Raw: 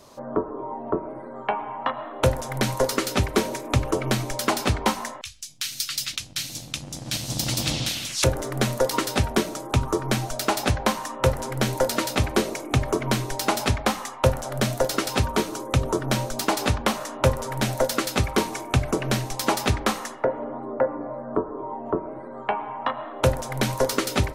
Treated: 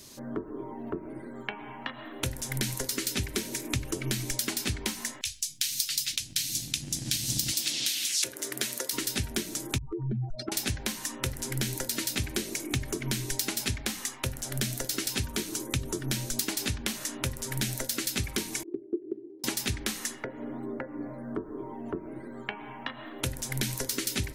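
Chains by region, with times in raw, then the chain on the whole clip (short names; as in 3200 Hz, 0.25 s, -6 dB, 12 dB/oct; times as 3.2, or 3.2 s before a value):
7.51–8.93 HPF 390 Hz + notch 790 Hz, Q 19
9.78–10.52 spectral contrast raised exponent 2.8 + LPF 2300 Hz + compressor 3:1, threshold -26 dBFS
18.63–19.44 Butterworth band-pass 360 Hz, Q 4.2 + transient shaper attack +7 dB, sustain +1 dB
whole clip: high shelf 4500 Hz +10 dB; compressor, threshold -26 dBFS; band shelf 790 Hz -12 dB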